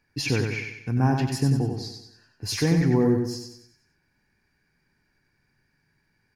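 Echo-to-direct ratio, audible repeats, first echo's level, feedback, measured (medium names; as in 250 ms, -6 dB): -4.0 dB, 5, -5.0 dB, 45%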